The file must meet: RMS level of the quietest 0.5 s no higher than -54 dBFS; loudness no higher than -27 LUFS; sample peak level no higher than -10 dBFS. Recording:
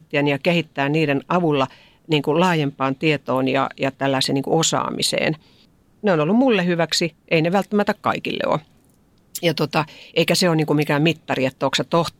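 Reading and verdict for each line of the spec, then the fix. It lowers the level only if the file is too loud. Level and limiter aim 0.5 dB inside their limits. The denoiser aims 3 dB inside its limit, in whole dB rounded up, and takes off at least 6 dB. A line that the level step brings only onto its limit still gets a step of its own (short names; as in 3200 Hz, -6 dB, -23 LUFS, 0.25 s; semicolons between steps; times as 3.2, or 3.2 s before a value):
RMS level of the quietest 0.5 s -56 dBFS: OK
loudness -20.0 LUFS: fail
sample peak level -5.5 dBFS: fail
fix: gain -7.5 dB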